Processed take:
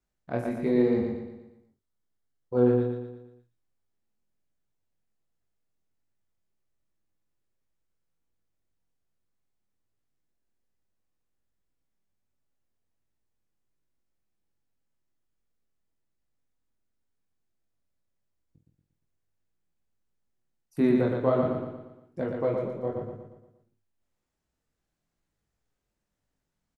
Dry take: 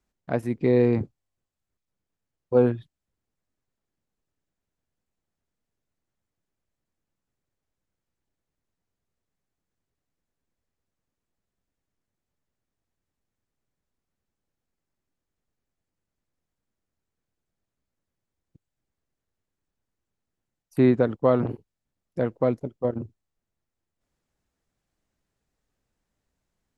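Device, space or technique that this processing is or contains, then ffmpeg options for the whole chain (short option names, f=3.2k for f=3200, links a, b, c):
double-tracked vocal: -filter_complex "[0:a]asettb=1/sr,asplit=3[a][b][c];[a]atrim=end=0.664[d];[b]atrim=start=0.66:end=2.67,asetpts=PTS-STARTPTS,afade=t=in:d=0.004:c=qsin,afade=t=out:st=2.006:d=0.004:c=qsin,bandreject=f=2.5k:w=5.5[e];[c]atrim=start=2.666[f];[d][e]acrossfade=d=0.004:c1=hsin:c2=qsin[g];[g][f]acrossfade=d=0.004:c1=qsin:c2=hsin,asplit=2[h][i];[i]adelay=19,volume=-11dB[j];[h][j]amix=inputs=2:normalize=0,flanger=delay=19.5:depth=5.1:speed=1.3,asplit=2[k][l];[l]adelay=49,volume=-9.5dB[m];[k][m]amix=inputs=2:normalize=0,aecho=1:1:117|234|351|468|585|702:0.631|0.297|0.139|0.0655|0.0308|0.0145,volume=-2.5dB"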